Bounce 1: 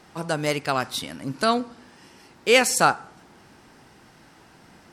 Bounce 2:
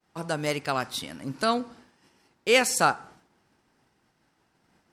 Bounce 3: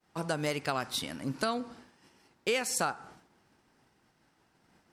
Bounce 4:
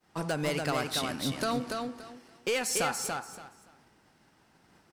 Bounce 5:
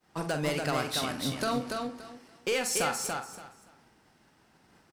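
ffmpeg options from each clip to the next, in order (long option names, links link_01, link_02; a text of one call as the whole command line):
ffmpeg -i in.wav -af "agate=range=-33dB:threshold=-42dB:ratio=3:detection=peak,volume=-3.5dB" out.wav
ffmpeg -i in.wav -af "acompressor=threshold=-27dB:ratio=6" out.wav
ffmpeg -i in.wav -af "asoftclip=type=tanh:threshold=-27dB,aecho=1:1:286|572|858:0.631|0.133|0.0278,volume=3.5dB" out.wav
ffmpeg -i in.wav -filter_complex "[0:a]asplit=2[link_01][link_02];[link_02]adelay=46,volume=-9dB[link_03];[link_01][link_03]amix=inputs=2:normalize=0" out.wav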